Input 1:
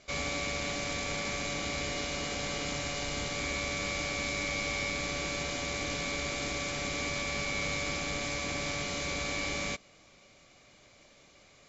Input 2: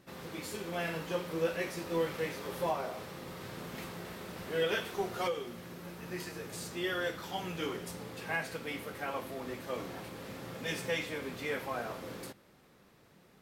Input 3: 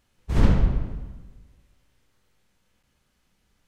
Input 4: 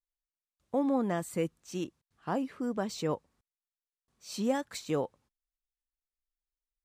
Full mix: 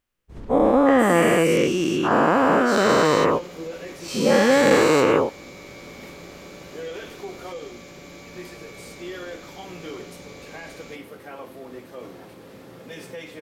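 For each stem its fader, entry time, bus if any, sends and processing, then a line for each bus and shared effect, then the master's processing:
-12.0 dB, 1.20 s, no send, none
-3.0 dB, 2.25 s, no send, peak limiter -27.5 dBFS, peak gain reduction 7 dB
-18.5 dB, 0.00 s, no send, peak limiter -11 dBFS, peak gain reduction 7.5 dB
+3.0 dB, 0.00 s, no send, every event in the spectrogram widened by 480 ms; high-order bell 1.8 kHz +8.5 dB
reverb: none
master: peaking EQ 380 Hz +6 dB 1.7 oct

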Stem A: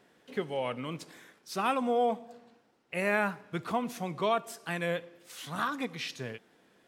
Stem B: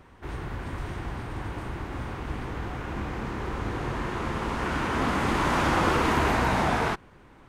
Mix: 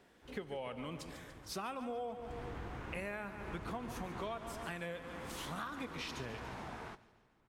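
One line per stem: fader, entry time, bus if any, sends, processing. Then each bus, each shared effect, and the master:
-2.0 dB, 0.00 s, no send, echo send -13 dB, none
1.81 s -23 dB -> 2.47 s -10 dB -> 4.47 s -10 dB -> 4.77 s -21.5 dB, 0.00 s, no send, echo send -21 dB, none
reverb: none
echo: feedback delay 144 ms, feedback 58%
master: compression 6:1, threshold -39 dBFS, peak gain reduction 14 dB

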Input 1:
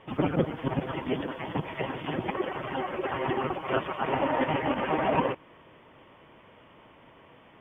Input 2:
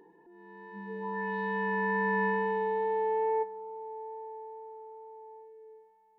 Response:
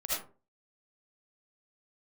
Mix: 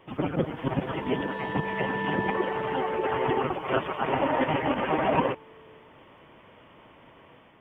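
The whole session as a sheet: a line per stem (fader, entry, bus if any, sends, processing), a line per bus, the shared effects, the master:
-2.5 dB, 0.00 s, no send, none
-6.0 dB, 0.00 s, no send, none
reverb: none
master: level rider gain up to 4 dB

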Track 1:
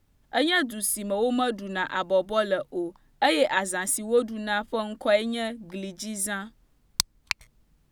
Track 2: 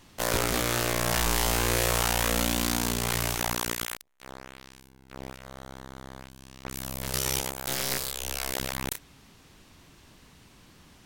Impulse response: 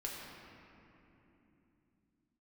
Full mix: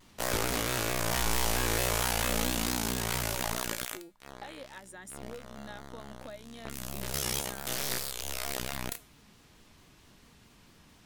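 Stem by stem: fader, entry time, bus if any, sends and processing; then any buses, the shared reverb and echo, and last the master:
-12.0 dB, 1.20 s, no send, compression, threshold -32 dBFS, peak gain reduction 15 dB
+3.0 dB, 0.00 s, no send, feedback comb 220 Hz, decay 0.37 s, harmonics all, mix 60%; vibrato with a chosen wave square 4.5 Hz, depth 100 cents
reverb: none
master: none

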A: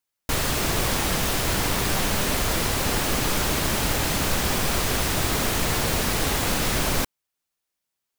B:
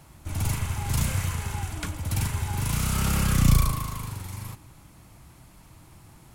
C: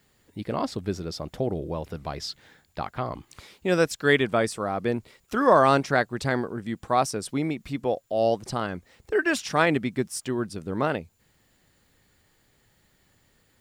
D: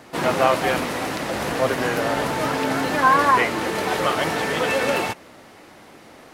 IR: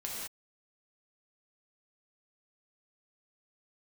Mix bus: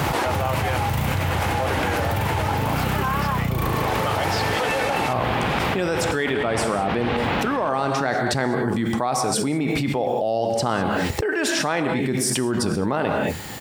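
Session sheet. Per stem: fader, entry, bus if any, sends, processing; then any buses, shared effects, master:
-13.5 dB, 0.85 s, no send, low-pass 3.1 kHz 24 dB/octave; tremolo saw up 1.9 Hz, depth 75%
-4.5 dB, 0.00 s, no send, high-order bell 7.1 kHz -13.5 dB
-12.0 dB, 2.10 s, send -6.5 dB, none
-15.0 dB, 0.00 s, no send, high-pass 320 Hz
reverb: on, pre-delay 3 ms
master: high-pass 86 Hz; peaking EQ 830 Hz +6.5 dB 0.22 oct; level flattener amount 100%

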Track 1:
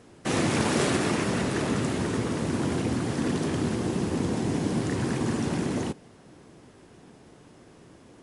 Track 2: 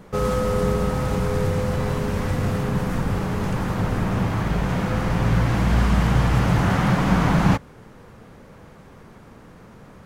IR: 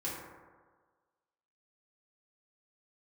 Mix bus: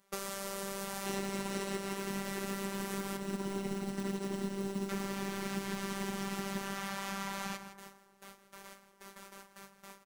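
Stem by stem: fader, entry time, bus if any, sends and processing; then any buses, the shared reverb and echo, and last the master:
+0.5 dB, 0.80 s, no send, echo send -6 dB, rippled EQ curve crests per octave 2, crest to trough 6 dB; modulation noise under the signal 21 dB; upward expansion 2.5:1, over -35 dBFS
-1.5 dB, 0.00 s, muted 3.17–4.89 s, send -11.5 dB, echo send -14.5 dB, gate with hold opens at -35 dBFS; tilt EQ +4 dB/octave; compression 6:1, threshold -33 dBFS, peak gain reduction 13.5 dB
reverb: on, RT60 1.5 s, pre-delay 3 ms
echo: delay 164 ms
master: robot voice 196 Hz; compression 12:1, threshold -31 dBFS, peak gain reduction 12.5 dB

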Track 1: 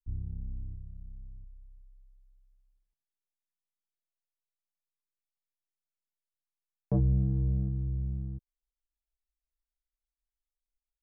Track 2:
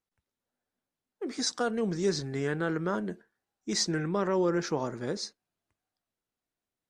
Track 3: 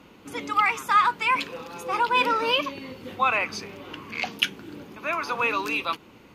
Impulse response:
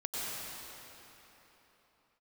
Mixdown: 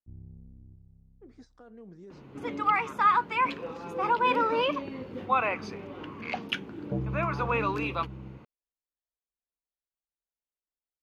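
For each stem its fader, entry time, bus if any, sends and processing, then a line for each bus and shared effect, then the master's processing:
+1.5 dB, 0.00 s, no send, band-pass filter 530 Hz, Q 0.57
-16.5 dB, 0.00 s, no send, peak limiter -23 dBFS, peak gain reduction 7.5 dB; endings held to a fixed fall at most 280 dB/s
+1.0 dB, 2.10 s, no send, none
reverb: none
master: low-pass 1 kHz 6 dB/octave

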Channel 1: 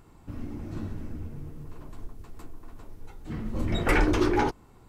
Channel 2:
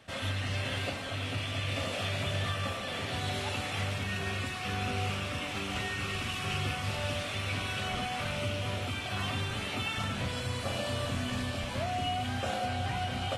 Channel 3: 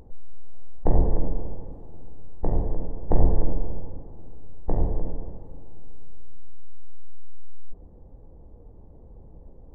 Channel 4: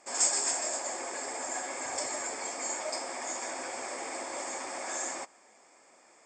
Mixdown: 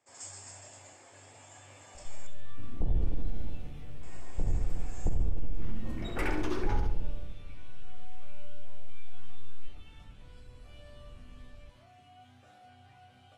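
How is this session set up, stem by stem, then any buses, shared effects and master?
-10.5 dB, 2.30 s, no send, echo send -6.5 dB, none
-14.5 dB, 0.00 s, no send, no echo send, chord resonator G2 major, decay 0.25 s
-2.0 dB, 1.95 s, no send, echo send -14.5 dB, Chebyshev low-pass 640 Hz, order 2; peaking EQ 590 Hz -12.5 dB 2.9 oct
-19.0 dB, 0.00 s, muted 2.27–4.03 s, no send, echo send -10.5 dB, none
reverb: none
echo: feedback delay 68 ms, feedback 41%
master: peak limiter -17.5 dBFS, peak gain reduction 10.5 dB

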